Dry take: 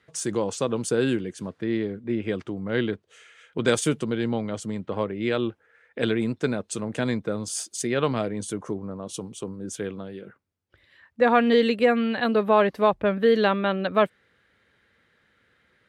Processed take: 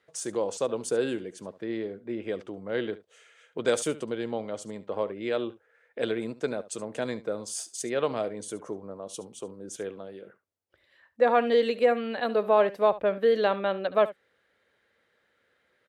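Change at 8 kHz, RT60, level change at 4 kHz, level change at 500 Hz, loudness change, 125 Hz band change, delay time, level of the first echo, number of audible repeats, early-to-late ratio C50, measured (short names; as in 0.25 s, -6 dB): -4.0 dB, none, -5.5 dB, -2.0 dB, -3.5 dB, -12.5 dB, 71 ms, -17.0 dB, 1, none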